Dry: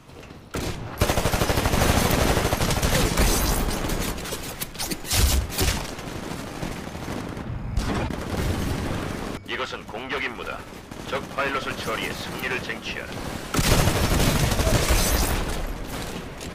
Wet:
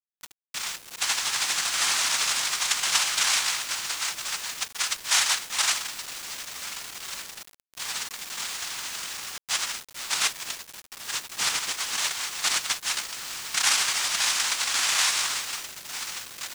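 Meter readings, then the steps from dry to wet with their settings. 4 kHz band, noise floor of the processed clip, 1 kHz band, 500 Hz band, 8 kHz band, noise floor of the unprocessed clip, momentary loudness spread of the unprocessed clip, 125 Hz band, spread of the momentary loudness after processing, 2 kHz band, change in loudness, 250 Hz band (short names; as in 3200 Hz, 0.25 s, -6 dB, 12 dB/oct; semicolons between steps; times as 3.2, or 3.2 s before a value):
+4.5 dB, -60 dBFS, -5.0 dB, -20.0 dB, +5.0 dB, -40 dBFS, 12 LU, -31.5 dB, 13 LU, 0.0 dB, -0.5 dB, -25.5 dB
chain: steep high-pass 1600 Hz 48 dB/oct; noise vocoder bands 2; bit-crush 7-bit; gain +4.5 dB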